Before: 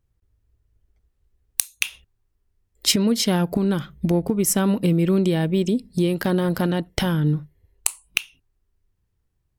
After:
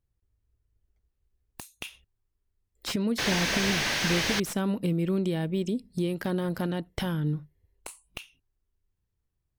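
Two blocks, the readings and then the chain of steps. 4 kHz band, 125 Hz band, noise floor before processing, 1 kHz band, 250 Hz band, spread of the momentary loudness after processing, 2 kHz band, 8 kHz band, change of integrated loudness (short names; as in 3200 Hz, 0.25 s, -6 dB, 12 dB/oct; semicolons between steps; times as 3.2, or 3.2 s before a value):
-4.0 dB, -8.0 dB, -72 dBFS, -4.5 dB, -8.0 dB, 20 LU, 0.0 dB, -10.0 dB, -6.0 dB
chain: painted sound noise, 3.18–4.4, 1500–6700 Hz -12 dBFS; slew limiter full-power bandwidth 340 Hz; gain -8 dB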